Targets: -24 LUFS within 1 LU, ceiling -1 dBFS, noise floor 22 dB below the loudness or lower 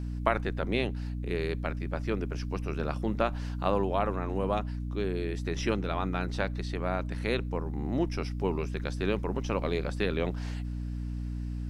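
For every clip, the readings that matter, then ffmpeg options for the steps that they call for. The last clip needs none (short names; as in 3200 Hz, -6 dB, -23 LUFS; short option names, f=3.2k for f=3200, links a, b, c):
hum 60 Hz; harmonics up to 300 Hz; hum level -32 dBFS; loudness -32.0 LUFS; peak -8.5 dBFS; loudness target -24.0 LUFS
-> -af "bandreject=f=60:t=h:w=4,bandreject=f=120:t=h:w=4,bandreject=f=180:t=h:w=4,bandreject=f=240:t=h:w=4,bandreject=f=300:t=h:w=4"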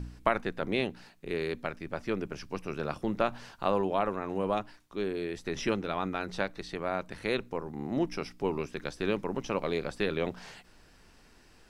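hum none; loudness -33.0 LUFS; peak -8.5 dBFS; loudness target -24.0 LUFS
-> -af "volume=9dB,alimiter=limit=-1dB:level=0:latency=1"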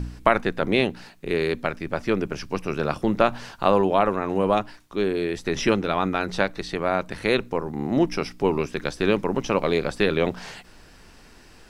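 loudness -24.5 LUFS; peak -1.0 dBFS; noise floor -50 dBFS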